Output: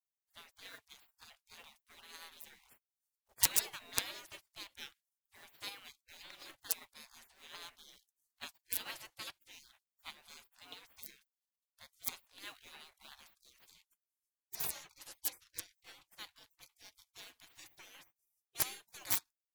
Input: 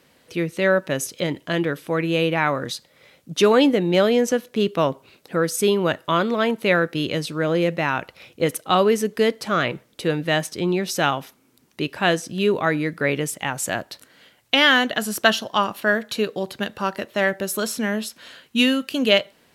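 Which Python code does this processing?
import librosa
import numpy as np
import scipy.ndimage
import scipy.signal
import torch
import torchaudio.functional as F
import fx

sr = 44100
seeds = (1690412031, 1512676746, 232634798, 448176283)

y = fx.law_mismatch(x, sr, coded='A')
y = (np.mod(10.0 ** (6.5 / 20.0) * y + 1.0, 2.0) - 1.0) / 10.0 ** (6.5 / 20.0)
y = fx.high_shelf(y, sr, hz=11000.0, db=-7.0, at=(13.71, 16.08))
y = fx.spec_gate(y, sr, threshold_db=-30, keep='weak')
y = fx.peak_eq(y, sr, hz=1300.0, db=-2.5, octaves=0.3)
y = fx.upward_expand(y, sr, threshold_db=-49.0, expansion=1.5)
y = y * 10.0 ** (1.0 / 20.0)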